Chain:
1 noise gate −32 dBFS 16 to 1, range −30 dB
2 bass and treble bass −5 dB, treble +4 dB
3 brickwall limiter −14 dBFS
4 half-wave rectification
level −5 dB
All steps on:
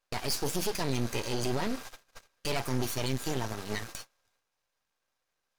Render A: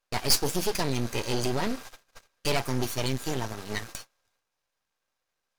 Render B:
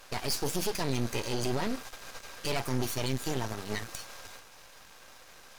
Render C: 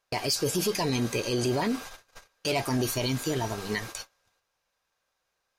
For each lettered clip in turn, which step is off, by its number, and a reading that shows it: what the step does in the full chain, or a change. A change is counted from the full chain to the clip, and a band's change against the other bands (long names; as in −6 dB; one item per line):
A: 3, average gain reduction 2.0 dB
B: 1, change in momentary loudness spread +11 LU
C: 4, distortion level 0 dB